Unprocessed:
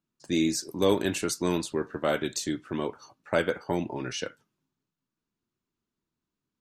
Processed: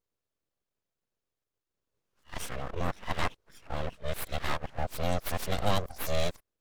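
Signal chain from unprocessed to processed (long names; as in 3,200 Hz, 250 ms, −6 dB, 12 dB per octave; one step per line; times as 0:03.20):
played backwards from end to start
notch comb filter 540 Hz
full-wave rectification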